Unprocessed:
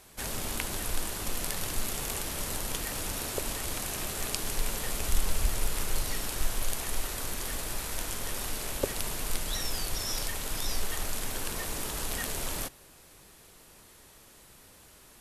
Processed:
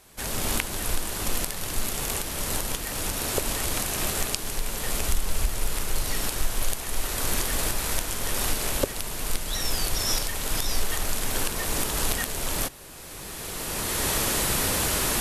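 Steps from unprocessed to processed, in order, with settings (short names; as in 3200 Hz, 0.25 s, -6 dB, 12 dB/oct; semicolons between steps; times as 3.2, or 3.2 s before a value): recorder AGC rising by 16 dB/s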